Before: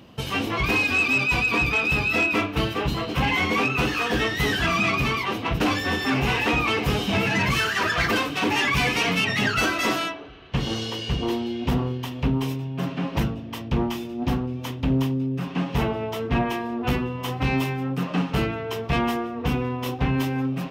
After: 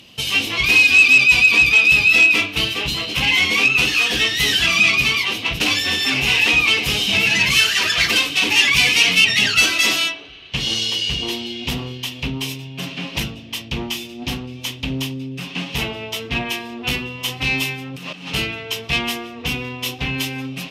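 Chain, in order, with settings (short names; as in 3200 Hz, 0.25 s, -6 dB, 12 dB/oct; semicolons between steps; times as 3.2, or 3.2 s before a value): band shelf 5300 Hz +16 dB 2.9 oct; 17.75–18.34 negative-ratio compressor -29 dBFS, ratio -1; gain -3.5 dB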